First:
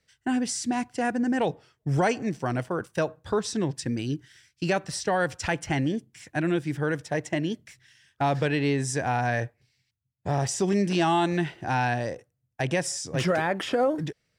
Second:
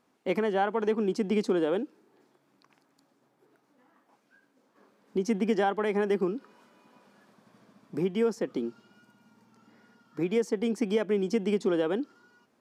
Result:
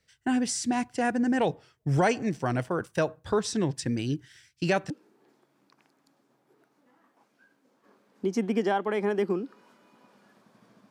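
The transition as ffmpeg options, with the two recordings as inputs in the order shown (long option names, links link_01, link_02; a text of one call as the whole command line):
ffmpeg -i cue0.wav -i cue1.wav -filter_complex "[0:a]apad=whole_dur=10.9,atrim=end=10.9,atrim=end=4.902[link_01];[1:a]atrim=start=1.818:end=7.82[link_02];[link_01][link_02]acrossfade=duration=0.004:curve1=hsin:curve2=hsin" out.wav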